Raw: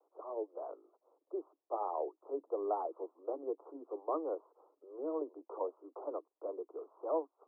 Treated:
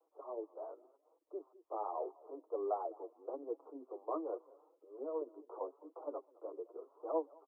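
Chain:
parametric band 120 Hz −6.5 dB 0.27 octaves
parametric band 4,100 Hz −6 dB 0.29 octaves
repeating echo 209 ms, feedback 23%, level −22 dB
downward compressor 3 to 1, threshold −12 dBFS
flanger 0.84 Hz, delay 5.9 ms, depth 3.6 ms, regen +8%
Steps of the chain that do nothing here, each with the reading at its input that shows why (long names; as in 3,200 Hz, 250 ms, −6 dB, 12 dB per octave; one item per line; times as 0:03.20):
parametric band 120 Hz: nothing at its input below 240 Hz
parametric band 4,100 Hz: nothing at its input above 1,400 Hz
downward compressor, threshold −12 dBFS: peak of its input −23.0 dBFS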